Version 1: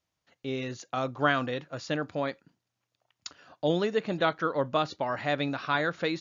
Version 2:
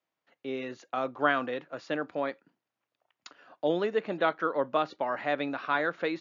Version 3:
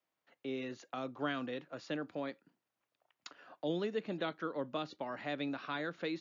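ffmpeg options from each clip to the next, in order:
ffmpeg -i in.wav -filter_complex "[0:a]acrossover=split=210 3100:gain=0.1 1 0.224[link_01][link_02][link_03];[link_01][link_02][link_03]amix=inputs=3:normalize=0" out.wav
ffmpeg -i in.wav -filter_complex "[0:a]acrossover=split=320|3000[link_01][link_02][link_03];[link_02]acompressor=threshold=-47dB:ratio=2[link_04];[link_01][link_04][link_03]amix=inputs=3:normalize=0,volume=-1.5dB" out.wav

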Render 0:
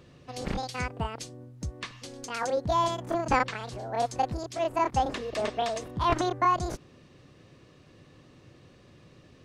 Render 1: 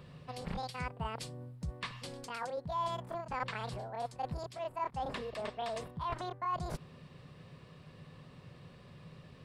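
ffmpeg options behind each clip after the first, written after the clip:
ffmpeg -i in.wav -af "areverse,acompressor=threshold=-36dB:ratio=6,areverse,equalizer=frequency=160:width_type=o:width=0.33:gain=8,equalizer=frequency=315:width_type=o:width=0.33:gain=-12,equalizer=frequency=1000:width_type=o:width=0.33:gain=4,equalizer=frequency=6300:width_type=o:width=0.33:gain=-11" out.wav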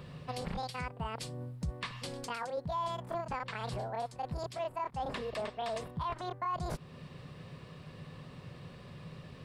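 ffmpeg -i in.wav -af "alimiter=level_in=8.5dB:limit=-24dB:level=0:latency=1:release=266,volume=-8.5dB,volume=5dB" out.wav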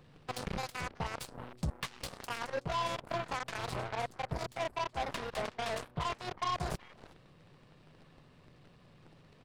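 ffmpeg -i in.wav -filter_complex "[0:a]asplit=2[link_01][link_02];[link_02]adelay=373.2,volume=-10dB,highshelf=frequency=4000:gain=-8.4[link_03];[link_01][link_03]amix=inputs=2:normalize=0,aeval=exprs='0.0562*(cos(1*acos(clip(val(0)/0.0562,-1,1)))-cos(1*PI/2))+0.00224*(cos(5*acos(clip(val(0)/0.0562,-1,1)))-cos(5*PI/2))+0.0126*(cos(7*acos(clip(val(0)/0.0562,-1,1)))-cos(7*PI/2))+0.002*(cos(8*acos(clip(val(0)/0.0562,-1,1)))-cos(8*PI/2))':channel_layout=same" out.wav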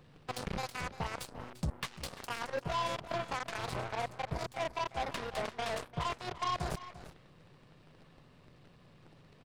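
ffmpeg -i in.wav -af "aecho=1:1:345:0.168" out.wav

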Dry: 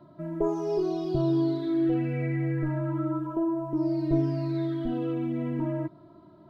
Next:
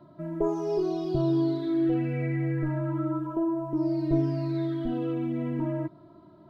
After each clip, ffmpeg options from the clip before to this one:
ffmpeg -i in.wav -af anull out.wav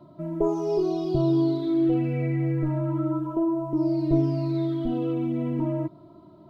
ffmpeg -i in.wav -af "equalizer=frequency=1700:width_type=o:width=0.44:gain=-11.5,volume=3dB" out.wav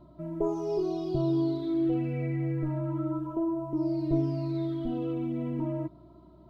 ffmpeg -i in.wav -af "aeval=exprs='val(0)+0.00224*(sin(2*PI*60*n/s)+sin(2*PI*2*60*n/s)/2+sin(2*PI*3*60*n/s)/3+sin(2*PI*4*60*n/s)/4+sin(2*PI*5*60*n/s)/5)':channel_layout=same,volume=-5dB" out.wav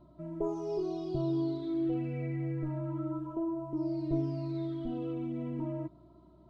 ffmpeg -i in.wav -af "aresample=22050,aresample=44100,volume=-4.5dB" out.wav

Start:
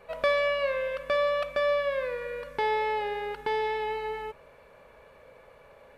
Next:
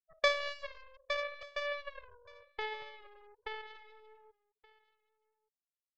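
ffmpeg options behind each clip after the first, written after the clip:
ffmpeg -i in.wav -af "afftfilt=real='re*gte(hypot(re,im),0.0631)':imag='im*gte(hypot(re,im),0.0631)':win_size=1024:overlap=0.75,aeval=exprs='0.188*(cos(1*acos(clip(val(0)/0.188,-1,1)))-cos(1*PI/2))+0.0668*(cos(3*acos(clip(val(0)/0.188,-1,1)))-cos(3*PI/2))+0.0075*(cos(4*acos(clip(val(0)/0.188,-1,1)))-cos(4*PI/2))':channel_layout=same,aecho=1:1:1174:0.0708" out.wav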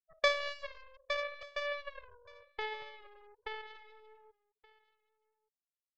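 ffmpeg -i in.wav -af anull out.wav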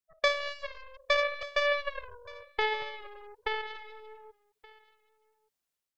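ffmpeg -i in.wav -af "dynaudnorm=framelen=520:gausssize=3:maxgain=8.5dB,volume=1.5dB" out.wav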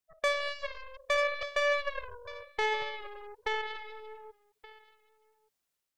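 ffmpeg -i in.wav -af "asoftclip=type=tanh:threshold=-21dB,volume=2.5dB" out.wav

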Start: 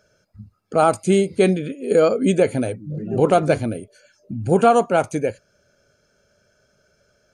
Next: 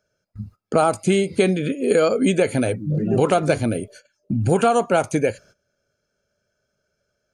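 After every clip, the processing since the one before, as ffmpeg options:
ffmpeg -i in.wav -filter_complex "[0:a]agate=range=-19dB:threshold=-49dB:ratio=16:detection=peak,acrossover=split=1200|3800[link_01][link_02][link_03];[link_01]acompressor=threshold=-24dB:ratio=4[link_04];[link_02]acompressor=threshold=-35dB:ratio=4[link_05];[link_03]acompressor=threshold=-42dB:ratio=4[link_06];[link_04][link_05][link_06]amix=inputs=3:normalize=0,volume=7.5dB" out.wav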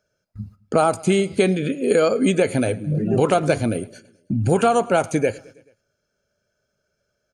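ffmpeg -i in.wav -af "aecho=1:1:108|216|324|432:0.0708|0.0425|0.0255|0.0153" out.wav

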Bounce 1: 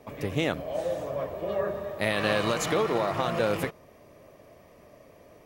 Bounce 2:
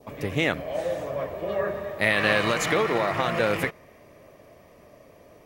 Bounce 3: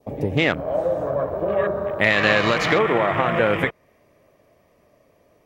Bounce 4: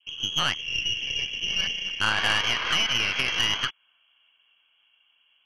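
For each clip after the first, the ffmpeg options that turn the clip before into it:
ffmpeg -i in.wav -af "adynamicequalizer=threshold=0.00501:dfrequency=2000:dqfactor=1.7:tfrequency=2000:tqfactor=1.7:attack=5:release=100:ratio=0.375:range=4:mode=boostabove:tftype=bell,volume=1.5dB" out.wav
ffmpeg -i in.wav -filter_complex "[0:a]afwtdn=0.0178,asplit=2[link_01][link_02];[link_02]acompressor=threshold=-32dB:ratio=6,volume=3dB[link_03];[link_01][link_03]amix=inputs=2:normalize=0,volume=2dB" out.wav
ffmpeg -i in.wav -af "lowpass=frequency=2900:width_type=q:width=0.5098,lowpass=frequency=2900:width_type=q:width=0.6013,lowpass=frequency=2900:width_type=q:width=0.9,lowpass=frequency=2900:width_type=q:width=2.563,afreqshift=-3400,aeval=exprs='0.708*(cos(1*acos(clip(val(0)/0.708,-1,1)))-cos(1*PI/2))+0.1*(cos(6*acos(clip(val(0)/0.708,-1,1)))-cos(6*PI/2))+0.0158*(cos(8*acos(clip(val(0)/0.708,-1,1)))-cos(8*PI/2))':channel_layout=same,volume=-6.5dB" out.wav

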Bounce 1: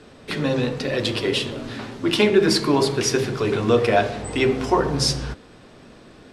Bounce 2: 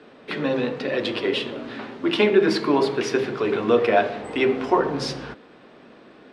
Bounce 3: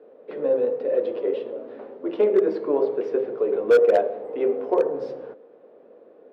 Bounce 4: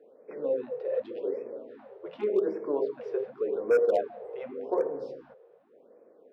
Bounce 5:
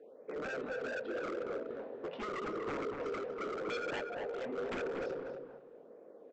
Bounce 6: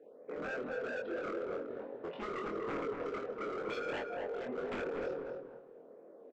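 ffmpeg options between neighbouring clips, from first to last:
ffmpeg -i in.wav -filter_complex "[0:a]acrossover=split=180 3800:gain=0.112 1 0.141[link_01][link_02][link_03];[link_01][link_02][link_03]amix=inputs=3:normalize=0" out.wav
ffmpeg -i in.wav -af "bandpass=frequency=500:width_type=q:width=4.8:csg=0,aeval=exprs='0.299*(cos(1*acos(clip(val(0)/0.299,-1,1)))-cos(1*PI/2))+0.00376*(cos(7*acos(clip(val(0)/0.299,-1,1)))-cos(7*PI/2))':channel_layout=same,volume=17.5dB,asoftclip=hard,volume=-17.5dB,volume=7dB" out.wav
ffmpeg -i in.wav -af "afftfilt=real='re*(1-between(b*sr/1024,230*pow(3700/230,0.5+0.5*sin(2*PI*0.87*pts/sr))/1.41,230*pow(3700/230,0.5+0.5*sin(2*PI*0.87*pts/sr))*1.41))':imag='im*(1-between(b*sr/1024,230*pow(3700/230,0.5+0.5*sin(2*PI*0.87*pts/sr))/1.41,230*pow(3700/230,0.5+0.5*sin(2*PI*0.87*pts/sr))*1.41))':win_size=1024:overlap=0.75,volume=-7dB" out.wav
ffmpeg -i in.wav -filter_complex "[0:a]acompressor=threshold=-33dB:ratio=2.5,aresample=16000,aeval=exprs='0.0168*(abs(mod(val(0)/0.0168+3,4)-2)-1)':channel_layout=same,aresample=44100,asplit=2[link_01][link_02];[link_02]adelay=241,lowpass=frequency=2000:poles=1,volume=-3.5dB,asplit=2[link_03][link_04];[link_04]adelay=241,lowpass=frequency=2000:poles=1,volume=0.25,asplit=2[link_05][link_06];[link_06]adelay=241,lowpass=frequency=2000:poles=1,volume=0.25,asplit=2[link_07][link_08];[link_08]adelay=241,lowpass=frequency=2000:poles=1,volume=0.25[link_09];[link_01][link_03][link_05][link_07][link_09]amix=inputs=5:normalize=0,volume=1dB" out.wav
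ffmpeg -i in.wav -filter_complex "[0:a]asplit=2[link_01][link_02];[link_02]adynamicsmooth=sensitivity=8:basefreq=3700,volume=-2dB[link_03];[link_01][link_03]amix=inputs=2:normalize=0,asplit=2[link_04][link_05];[link_05]adelay=24,volume=-3dB[link_06];[link_04][link_06]amix=inputs=2:normalize=0,volume=-6.5dB" out.wav

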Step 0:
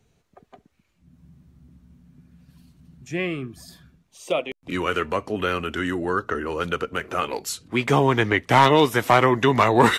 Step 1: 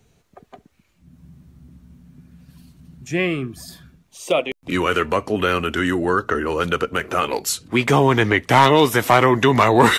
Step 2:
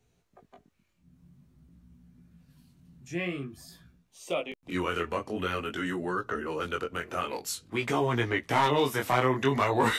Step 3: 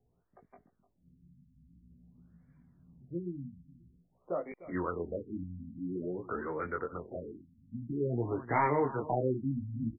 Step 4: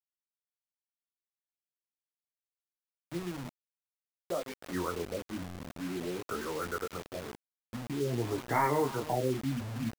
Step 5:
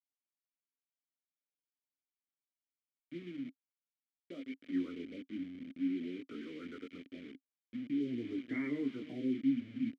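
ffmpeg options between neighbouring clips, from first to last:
ffmpeg -i in.wav -filter_complex "[0:a]highshelf=frequency=8500:gain=4,asplit=2[link_01][link_02];[link_02]alimiter=limit=-14dB:level=0:latency=1:release=29,volume=1dB[link_03];[link_01][link_03]amix=inputs=2:normalize=0,volume=-1dB" out.wav
ffmpeg -i in.wav -af "flanger=delay=16.5:depth=7.1:speed=0.49,volume=-8.5dB" out.wav
ffmpeg -i in.wav -af "aecho=1:1:301:0.15,afftfilt=real='re*lt(b*sr/1024,260*pow(2400/260,0.5+0.5*sin(2*PI*0.49*pts/sr)))':imag='im*lt(b*sr/1024,260*pow(2400/260,0.5+0.5*sin(2*PI*0.49*pts/sr)))':win_size=1024:overlap=0.75,volume=-3.5dB" out.wav
ffmpeg -i in.wav -af "acrusher=bits=6:mix=0:aa=0.000001" out.wav
ffmpeg -i in.wav -filter_complex "[0:a]asplit=3[link_01][link_02][link_03];[link_01]bandpass=frequency=270:width_type=q:width=8,volume=0dB[link_04];[link_02]bandpass=frequency=2290:width_type=q:width=8,volume=-6dB[link_05];[link_03]bandpass=frequency=3010:width_type=q:width=8,volume=-9dB[link_06];[link_04][link_05][link_06]amix=inputs=3:normalize=0,aemphasis=mode=reproduction:type=cd,volume=5.5dB" out.wav

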